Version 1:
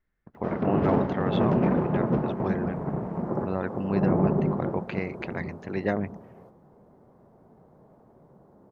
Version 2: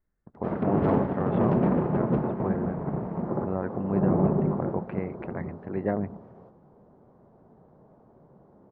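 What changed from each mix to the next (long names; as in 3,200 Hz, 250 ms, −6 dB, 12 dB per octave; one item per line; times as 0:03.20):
speech: add low-pass filter 1,300 Hz 12 dB per octave
master: add high-frequency loss of the air 160 metres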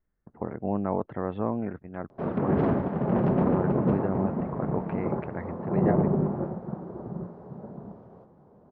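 background: entry +1.75 s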